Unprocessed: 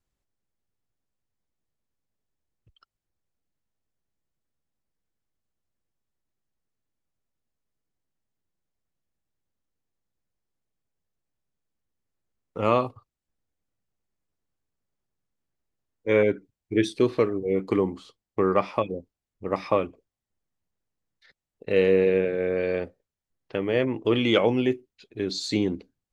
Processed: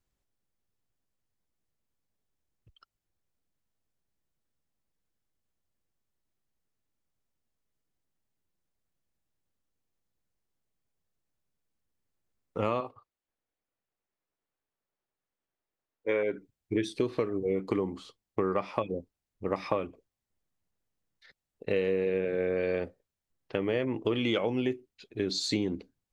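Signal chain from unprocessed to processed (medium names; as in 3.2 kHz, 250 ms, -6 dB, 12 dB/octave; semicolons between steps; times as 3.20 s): 12.80–16.33 s: tone controls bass -13 dB, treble -9 dB; compression 6:1, threshold -25 dBFS, peak gain reduction 10 dB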